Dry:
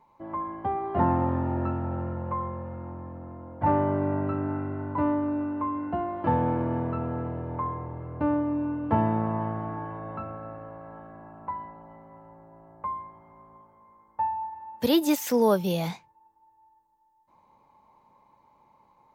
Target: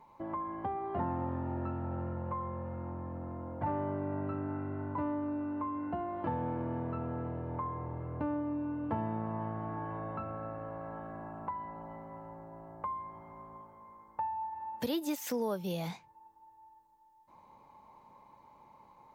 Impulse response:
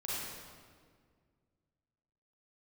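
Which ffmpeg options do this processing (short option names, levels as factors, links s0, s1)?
-af "acompressor=threshold=0.00891:ratio=2.5,volume=1.33"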